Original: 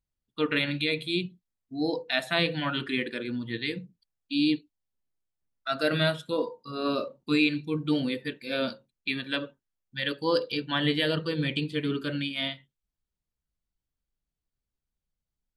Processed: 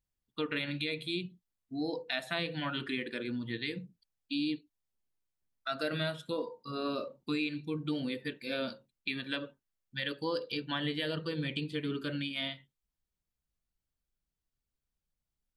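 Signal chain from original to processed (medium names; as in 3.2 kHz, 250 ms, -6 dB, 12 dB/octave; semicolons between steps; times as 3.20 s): compression 2.5:1, threshold -32 dBFS, peak gain reduction 9.5 dB; trim -1.5 dB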